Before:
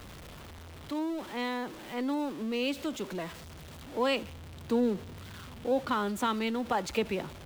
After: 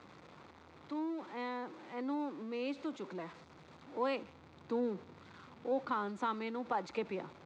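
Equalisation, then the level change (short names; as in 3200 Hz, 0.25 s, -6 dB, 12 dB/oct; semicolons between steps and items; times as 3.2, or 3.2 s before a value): speaker cabinet 220–6300 Hz, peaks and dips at 230 Hz -5 dB, 420 Hz -4 dB, 630 Hz -6 dB, 1700 Hz -4 dB, 3000 Hz -8 dB, 5400 Hz -4 dB; high shelf 3000 Hz -10.5 dB; -2.5 dB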